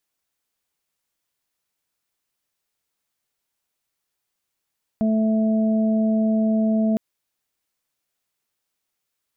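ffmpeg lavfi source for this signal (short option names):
-f lavfi -i "aevalsrc='0.141*sin(2*PI*219*t)+0.02*sin(2*PI*438*t)+0.0501*sin(2*PI*657*t)':d=1.96:s=44100"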